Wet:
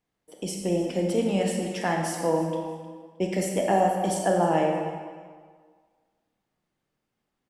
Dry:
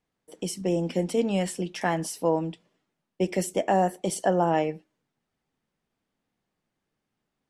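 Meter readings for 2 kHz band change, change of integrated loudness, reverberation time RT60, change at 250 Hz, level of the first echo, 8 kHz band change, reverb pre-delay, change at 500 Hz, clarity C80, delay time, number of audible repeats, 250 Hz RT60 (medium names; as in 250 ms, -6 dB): +1.0 dB, +1.0 dB, 1.7 s, +1.0 dB, -16.5 dB, +0.5 dB, 26 ms, +1.5 dB, 4.0 dB, 310 ms, 2, 1.6 s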